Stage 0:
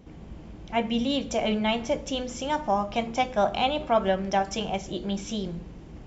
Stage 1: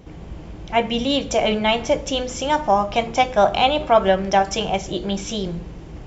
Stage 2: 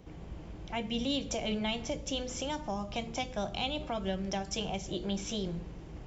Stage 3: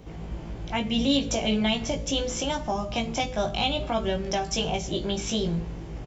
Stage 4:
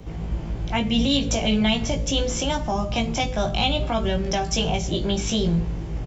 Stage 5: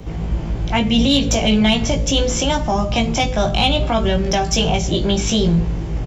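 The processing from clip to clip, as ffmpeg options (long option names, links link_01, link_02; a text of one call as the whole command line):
ffmpeg -i in.wav -af "equalizer=frequency=230:width=3.4:gain=-7,volume=8dB" out.wav
ffmpeg -i in.wav -filter_complex "[0:a]acrossover=split=310|3000[link_01][link_02][link_03];[link_02]acompressor=threshold=-28dB:ratio=6[link_04];[link_01][link_04][link_03]amix=inputs=3:normalize=0,volume=-9dB" out.wav
ffmpeg -i in.wav -filter_complex "[0:a]asplit=2[link_01][link_02];[link_02]adelay=18,volume=-3.5dB[link_03];[link_01][link_03]amix=inputs=2:normalize=0,volume=6.5dB" out.wav
ffmpeg -i in.wav -filter_complex "[0:a]acrossover=split=170|890[link_01][link_02][link_03];[link_01]acontrast=27[link_04];[link_02]alimiter=limit=-23dB:level=0:latency=1[link_05];[link_04][link_05][link_03]amix=inputs=3:normalize=0,volume=3.5dB" out.wav
ffmpeg -i in.wav -af "asoftclip=type=tanh:threshold=-10.5dB,volume=6.5dB" out.wav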